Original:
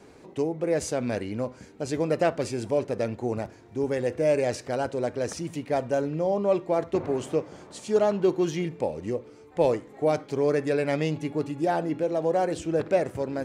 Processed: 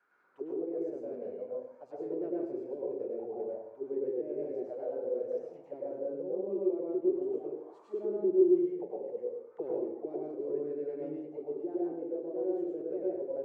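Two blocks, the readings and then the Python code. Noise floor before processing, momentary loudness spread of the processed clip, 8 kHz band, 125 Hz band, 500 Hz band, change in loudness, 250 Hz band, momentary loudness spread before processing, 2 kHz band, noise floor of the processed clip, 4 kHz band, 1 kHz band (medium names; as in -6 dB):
-51 dBFS, 9 LU, under -40 dB, under -20 dB, -7.5 dB, -7.5 dB, -6.0 dB, 8 LU, under -30 dB, -56 dBFS, under -35 dB, -19.5 dB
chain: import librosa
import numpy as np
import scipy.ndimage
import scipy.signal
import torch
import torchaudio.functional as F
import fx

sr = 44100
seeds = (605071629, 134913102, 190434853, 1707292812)

y = fx.auto_wah(x, sr, base_hz=360.0, top_hz=1500.0, q=8.8, full_db=-22.5, direction='down')
y = fx.rev_plate(y, sr, seeds[0], rt60_s=0.79, hf_ratio=0.55, predelay_ms=90, drr_db=-4.0)
y = y * librosa.db_to_amplitude(-5.0)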